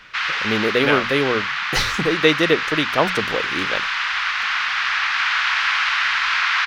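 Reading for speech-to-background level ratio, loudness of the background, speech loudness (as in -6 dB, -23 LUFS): -0.5 dB, -20.5 LUFS, -21.0 LUFS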